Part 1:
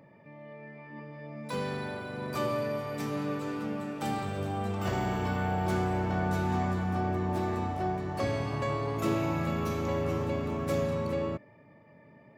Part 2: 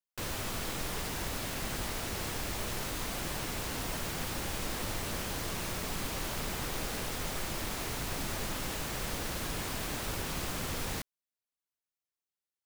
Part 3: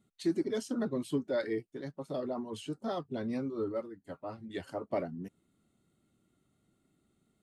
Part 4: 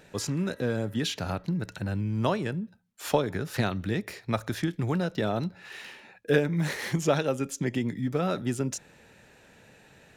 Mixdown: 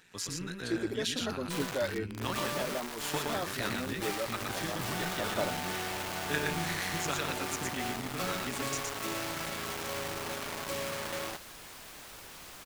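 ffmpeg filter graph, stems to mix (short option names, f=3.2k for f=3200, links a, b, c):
-filter_complex "[0:a]bandreject=f=60:t=h:w=6,bandreject=f=120:t=h:w=6,bandreject=f=180:t=h:w=6,acrusher=bits=4:mix=0:aa=0.000001,volume=-4.5dB[a];[1:a]adelay=2050,volume=-9.5dB[b];[2:a]adelay=450,volume=3dB[c];[3:a]equalizer=f=590:w=1.5:g=-14,tremolo=f=180:d=0.621,volume=0.5dB,asplit=2[d][e];[e]volume=-3dB,aecho=0:1:118:1[f];[a][b][c][d][f]amix=inputs=5:normalize=0,lowshelf=f=380:g=-11.5"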